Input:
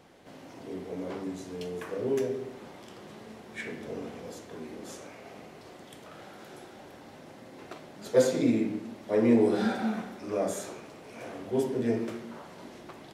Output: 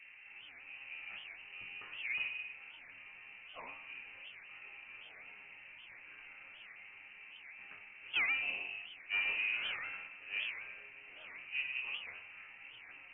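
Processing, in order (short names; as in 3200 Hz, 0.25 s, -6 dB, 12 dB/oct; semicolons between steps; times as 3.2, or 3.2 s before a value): bell 220 Hz -10 dB 2.2 oct; resonator bank F2 minor, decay 0.45 s; tube stage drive 43 dB, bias 0.75; band noise 120–990 Hz -70 dBFS; low shelf 500 Hz +7.5 dB; inverted band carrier 2900 Hz; record warp 78 rpm, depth 250 cents; gain +9 dB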